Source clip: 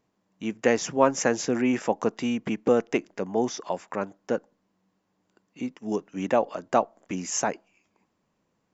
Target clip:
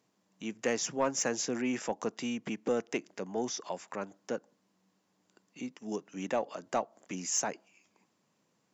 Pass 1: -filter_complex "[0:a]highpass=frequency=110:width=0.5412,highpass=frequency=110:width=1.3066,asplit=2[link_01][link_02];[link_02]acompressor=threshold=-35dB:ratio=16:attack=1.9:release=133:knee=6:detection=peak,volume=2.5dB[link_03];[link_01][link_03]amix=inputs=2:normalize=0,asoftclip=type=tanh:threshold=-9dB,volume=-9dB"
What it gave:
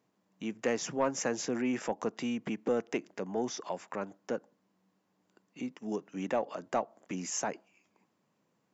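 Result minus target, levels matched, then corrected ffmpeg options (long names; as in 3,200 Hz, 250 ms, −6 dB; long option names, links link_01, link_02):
downward compressor: peak gain reduction −10.5 dB; 8,000 Hz band −4.5 dB
-filter_complex "[0:a]highpass=frequency=110:width=0.5412,highpass=frequency=110:width=1.3066,equalizer=frequency=6700:width=0.47:gain=7.5,asplit=2[link_01][link_02];[link_02]acompressor=threshold=-46dB:ratio=16:attack=1.9:release=133:knee=6:detection=peak,volume=2.5dB[link_03];[link_01][link_03]amix=inputs=2:normalize=0,asoftclip=type=tanh:threshold=-9dB,volume=-9dB"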